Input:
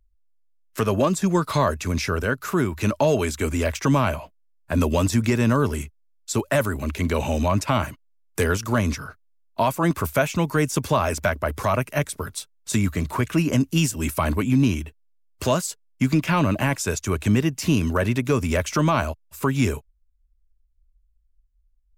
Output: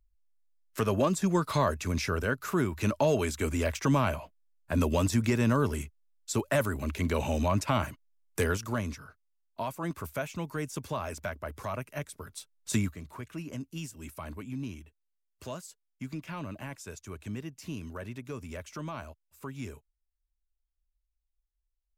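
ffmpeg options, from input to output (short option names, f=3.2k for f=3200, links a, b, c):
-af "volume=2dB,afade=t=out:st=8.4:d=0.54:silence=0.421697,afade=t=in:st=12.28:d=0.49:silence=0.398107,afade=t=out:st=12.77:d=0.18:silence=0.223872"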